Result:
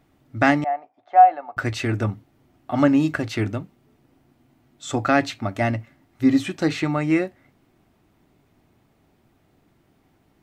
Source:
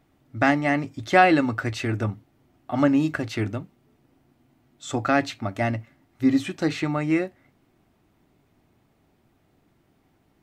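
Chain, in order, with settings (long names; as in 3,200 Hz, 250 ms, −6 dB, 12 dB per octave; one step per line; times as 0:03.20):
0:00.64–0:01.57: four-pole ladder band-pass 770 Hz, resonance 80%
level +2.5 dB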